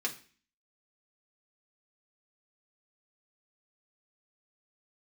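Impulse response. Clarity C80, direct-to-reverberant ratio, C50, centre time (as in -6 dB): 18.5 dB, -1.0 dB, 13.5 dB, 10 ms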